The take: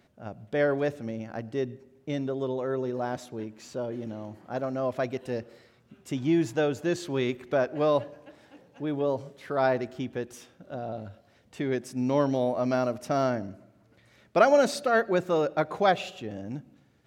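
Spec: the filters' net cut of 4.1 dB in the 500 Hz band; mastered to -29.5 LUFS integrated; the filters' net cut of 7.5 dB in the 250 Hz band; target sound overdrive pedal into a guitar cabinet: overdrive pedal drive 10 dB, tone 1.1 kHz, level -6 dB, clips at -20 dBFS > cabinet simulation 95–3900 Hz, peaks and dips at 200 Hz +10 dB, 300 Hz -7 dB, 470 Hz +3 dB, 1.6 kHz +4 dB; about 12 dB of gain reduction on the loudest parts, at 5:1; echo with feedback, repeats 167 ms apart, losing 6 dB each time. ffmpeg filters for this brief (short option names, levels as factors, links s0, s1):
-filter_complex "[0:a]equalizer=f=250:t=o:g=-8,equalizer=f=500:t=o:g=-4.5,acompressor=threshold=0.0282:ratio=5,aecho=1:1:167|334|501|668|835|1002:0.501|0.251|0.125|0.0626|0.0313|0.0157,asplit=2[s0][s1];[s1]highpass=f=720:p=1,volume=3.16,asoftclip=type=tanh:threshold=0.1[s2];[s0][s2]amix=inputs=2:normalize=0,lowpass=f=1100:p=1,volume=0.501,highpass=95,equalizer=f=200:t=q:w=4:g=10,equalizer=f=300:t=q:w=4:g=-7,equalizer=f=470:t=q:w=4:g=3,equalizer=f=1600:t=q:w=4:g=4,lowpass=f=3900:w=0.5412,lowpass=f=3900:w=1.3066,volume=2.24"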